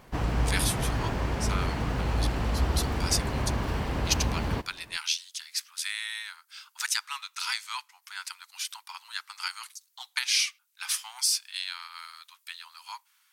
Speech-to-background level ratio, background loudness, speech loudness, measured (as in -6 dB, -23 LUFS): -2.0 dB, -30.0 LUFS, -32.0 LUFS